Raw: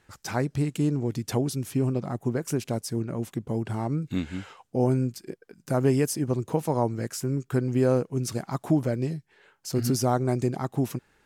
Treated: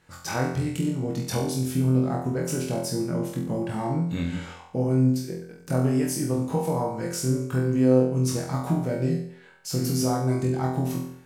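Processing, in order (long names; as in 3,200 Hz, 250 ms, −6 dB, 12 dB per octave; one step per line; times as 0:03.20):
downward compressor, threshold −25 dBFS, peak gain reduction 8.5 dB
flutter between parallel walls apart 4 metres, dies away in 0.59 s
on a send at −7 dB: convolution reverb RT60 0.45 s, pre-delay 3 ms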